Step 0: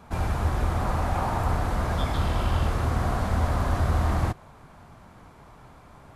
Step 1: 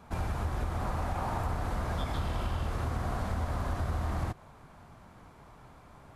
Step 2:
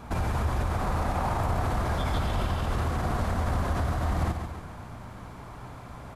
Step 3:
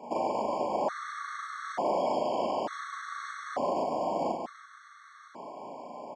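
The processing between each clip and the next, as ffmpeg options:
-af "acompressor=threshold=-24dB:ratio=6,volume=-4dB"
-af "alimiter=level_in=5dB:limit=-24dB:level=0:latency=1:release=49,volume=-5dB,aeval=exprs='val(0)+0.00158*(sin(2*PI*60*n/s)+sin(2*PI*2*60*n/s)/2+sin(2*PI*3*60*n/s)/3+sin(2*PI*4*60*n/s)/4+sin(2*PI*5*60*n/s)/5)':c=same,aecho=1:1:141|282|423|564|705|846:0.422|0.219|0.114|0.0593|0.0308|0.016,volume=9dB"
-filter_complex "[0:a]highpass=f=250:w=0.5412,highpass=f=250:w=1.3066,equalizer=f=580:t=q:w=4:g=8,equalizer=f=840:t=q:w=4:g=3,equalizer=f=1.4k:t=q:w=4:g=-4,equalizer=f=2.6k:t=q:w=4:g=-9,equalizer=f=3.8k:t=q:w=4:g=-4,lowpass=f=6.9k:w=0.5412,lowpass=f=6.9k:w=1.3066,asplit=2[a][b];[b]adelay=38,volume=-2dB[c];[a][c]amix=inputs=2:normalize=0,afftfilt=real='re*gt(sin(2*PI*0.56*pts/sr)*(1-2*mod(floor(b*sr/1024/1100),2)),0)':imag='im*gt(sin(2*PI*0.56*pts/sr)*(1-2*mod(floor(b*sr/1024/1100),2)),0)':win_size=1024:overlap=0.75"

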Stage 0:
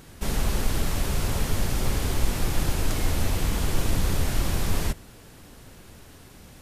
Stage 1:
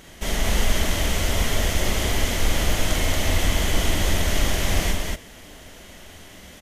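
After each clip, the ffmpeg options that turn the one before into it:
-filter_complex "[0:a]equalizer=f=125:t=o:w=0.33:g=-12,equalizer=f=630:t=o:w=0.33:g=7,equalizer=f=2k:t=o:w=0.33:g=9,equalizer=f=3.15k:t=o:w=0.33:g=9,equalizer=f=6.3k:t=o:w=0.33:g=6,asplit=2[a][b];[b]aecho=0:1:43.73|230.3:0.631|0.794[c];[a][c]amix=inputs=2:normalize=0"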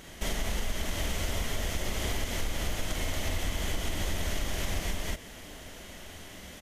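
-af "acompressor=threshold=-25dB:ratio=6,volume=-2dB"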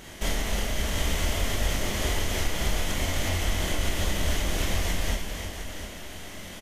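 -filter_complex "[0:a]flanger=delay=22.5:depth=6.8:speed=0.61,asplit=2[a][b];[b]aecho=0:1:310|708:0.422|0.316[c];[a][c]amix=inputs=2:normalize=0,volume=7dB"

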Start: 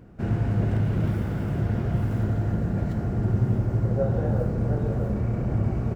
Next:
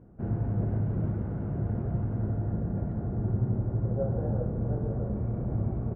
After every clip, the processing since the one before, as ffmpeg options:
-af "lowpass=1k,volume=-5dB"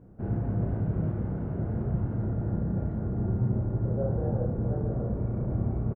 -filter_complex "[0:a]asplit=2[a][b];[b]adelay=32,volume=-4dB[c];[a][c]amix=inputs=2:normalize=0"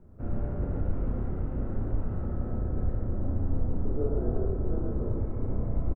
-af "afreqshift=-110,aecho=1:1:113:0.668"

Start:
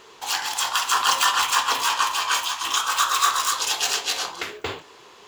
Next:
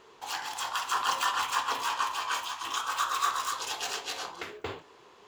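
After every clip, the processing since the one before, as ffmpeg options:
-af "highshelf=f=2.1k:g=-8,volume=-5.5dB"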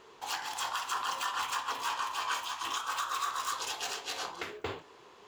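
-af "alimiter=limit=-22.5dB:level=0:latency=1:release=288"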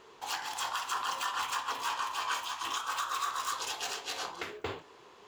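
-af anull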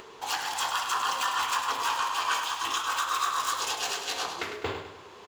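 -af "aecho=1:1:102|204|306|408|510:0.398|0.179|0.0806|0.0363|0.0163,acompressor=mode=upward:threshold=-48dB:ratio=2.5,volume=5dB"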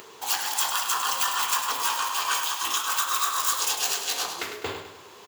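-af "highpass=87,aemphasis=mode=production:type=50fm"

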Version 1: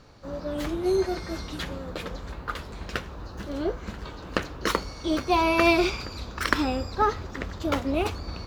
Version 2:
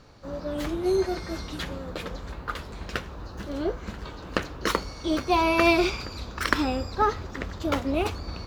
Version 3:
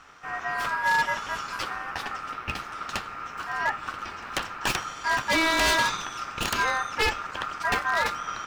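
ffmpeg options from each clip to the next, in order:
-af anull
-af "aeval=exprs='val(0)*sin(2*PI*1300*n/s)':c=same,aeval=exprs='0.1*(abs(mod(val(0)/0.1+3,4)-2)-1)':c=same,volume=4dB"

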